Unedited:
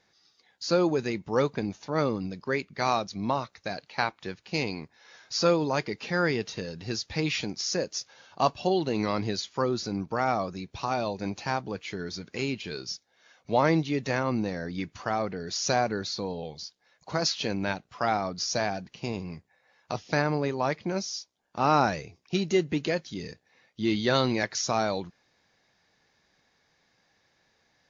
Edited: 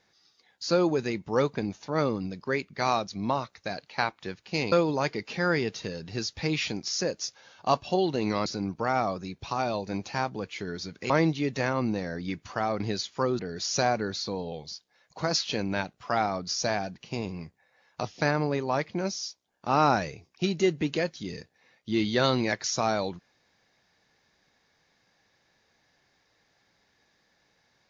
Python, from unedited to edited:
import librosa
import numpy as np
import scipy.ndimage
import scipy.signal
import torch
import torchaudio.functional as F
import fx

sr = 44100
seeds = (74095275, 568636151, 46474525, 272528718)

y = fx.edit(x, sr, fx.cut(start_s=4.72, length_s=0.73),
    fx.move(start_s=9.19, length_s=0.59, to_s=15.3),
    fx.cut(start_s=12.42, length_s=1.18), tone=tone)